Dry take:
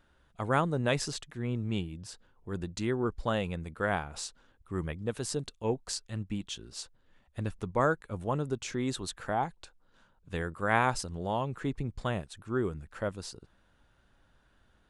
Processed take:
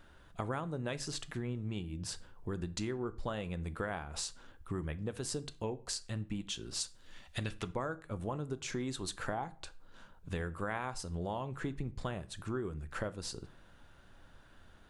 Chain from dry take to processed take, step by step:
0:06.80–0:07.73: parametric band 9,500 Hz → 2,500 Hz +14 dB 2.6 octaves
downward compressor 6 to 1, threshold −42 dBFS, peak gain reduction 20 dB
on a send: convolution reverb RT60 0.45 s, pre-delay 3 ms, DRR 13 dB
on the sum: level +6.5 dB

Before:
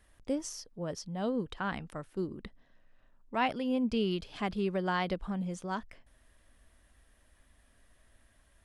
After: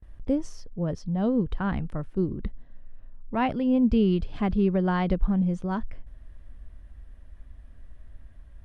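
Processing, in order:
RIAA equalisation playback
noise gate with hold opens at −45 dBFS
level +2.5 dB

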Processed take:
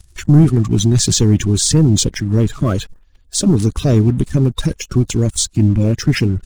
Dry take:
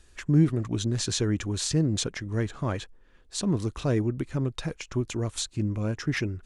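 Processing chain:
spectral magnitudes quantised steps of 30 dB
leveller curve on the samples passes 2
bass and treble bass +11 dB, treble +8 dB
level +1 dB

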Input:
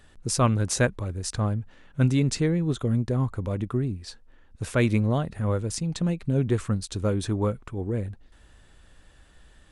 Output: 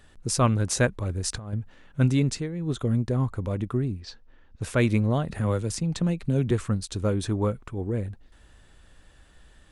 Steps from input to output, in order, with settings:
0:01.02–0:01.53: compressor whose output falls as the input rises −29 dBFS, ratio −0.5
0:02.24–0:02.77: duck −10.5 dB, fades 0.25 s
0:04.00–0:04.62: low-pass filter 6,000 Hz 24 dB per octave
0:05.28–0:06.51: multiband upward and downward compressor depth 40%

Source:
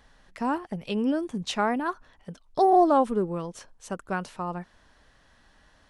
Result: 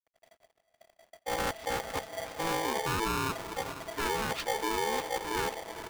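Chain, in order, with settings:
played backwards from end to start
noise gate −56 dBFS, range −36 dB
low-pass filter 4,200 Hz 24 dB per octave
low-shelf EQ 300 Hz +9 dB
hum removal 54.2 Hz, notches 4
in parallel at −2 dB: downward compressor 8 to 1, threshold −28 dBFS, peak gain reduction 15.5 dB
on the sum: brickwall limiter −18.5 dBFS, peak gain reduction 11 dB
dead-zone distortion −60 dBFS
feedback delay with all-pass diffusion 465 ms, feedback 49%, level −13 dB
soft clipping −22 dBFS, distortion −16 dB
pitch-shifted copies added −7 semitones −1 dB, −5 semitones −9 dB
ring modulator with a square carrier 660 Hz
level −7 dB

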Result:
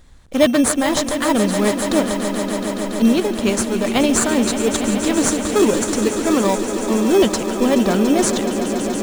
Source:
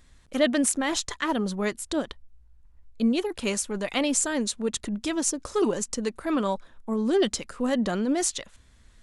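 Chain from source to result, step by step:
in parallel at −3.5 dB: decimation without filtering 15×
on the sum: echo that builds up and dies away 142 ms, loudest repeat 5, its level −12 dB
level +4.5 dB

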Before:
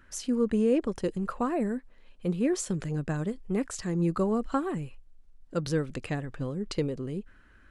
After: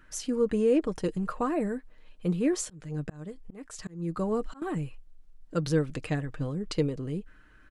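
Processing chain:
comb filter 6.5 ms, depth 40%
0:02.55–0:04.62: volume swells 484 ms

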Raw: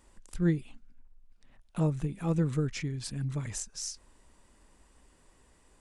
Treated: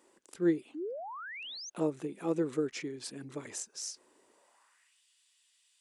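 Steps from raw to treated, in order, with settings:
sound drawn into the spectrogram rise, 0:00.74–0:01.70, 280–6,600 Hz −41 dBFS
high-pass filter sweep 360 Hz → 3,300 Hz, 0:04.29–0:05.00
level −2.5 dB

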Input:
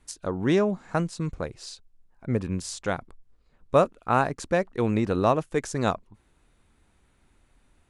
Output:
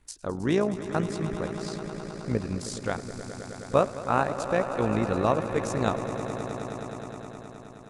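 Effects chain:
echo that builds up and dies away 105 ms, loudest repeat 5, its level −14 dB
amplitude modulation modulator 57 Hz, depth 40%

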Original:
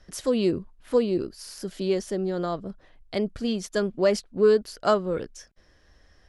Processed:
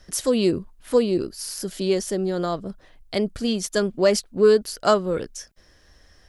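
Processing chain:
high-shelf EQ 6,000 Hz +11 dB
level +3 dB

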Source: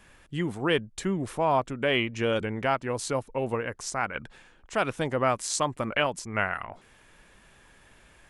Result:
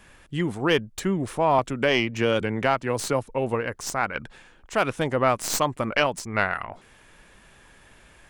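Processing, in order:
stylus tracing distortion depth 0.07 ms
0:01.58–0:03.29: multiband upward and downward compressor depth 40%
level +3.5 dB

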